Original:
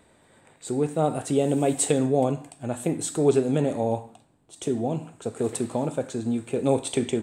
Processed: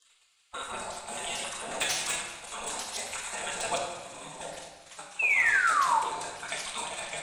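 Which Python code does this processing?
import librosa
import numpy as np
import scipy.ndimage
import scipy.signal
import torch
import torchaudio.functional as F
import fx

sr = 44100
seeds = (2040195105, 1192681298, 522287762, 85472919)

p1 = fx.block_reorder(x, sr, ms=90.0, group=6)
p2 = p1 + fx.echo_thinned(p1, sr, ms=193, feedback_pct=83, hz=930.0, wet_db=-14, dry=0)
p3 = fx.spec_gate(p2, sr, threshold_db=-20, keep='weak')
p4 = scipy.signal.sosfilt(scipy.signal.butter(2, 9300.0, 'lowpass', fs=sr, output='sos'), p3)
p5 = fx.low_shelf(p4, sr, hz=240.0, db=-11.0)
p6 = fx.level_steps(p5, sr, step_db=12)
p7 = p5 + (p6 * 10.0 ** (0.5 / 20.0))
p8 = fx.spec_paint(p7, sr, seeds[0], shape='fall', start_s=5.19, length_s=0.8, low_hz=860.0, high_hz=2700.0, level_db=-28.0)
p9 = fx.dynamic_eq(p8, sr, hz=5800.0, q=0.86, threshold_db=-42.0, ratio=4.0, max_db=5)
p10 = fx.room_shoebox(p9, sr, seeds[1], volume_m3=720.0, walls='mixed', distance_m=1.6)
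y = fx.slew_limit(p10, sr, full_power_hz=280.0)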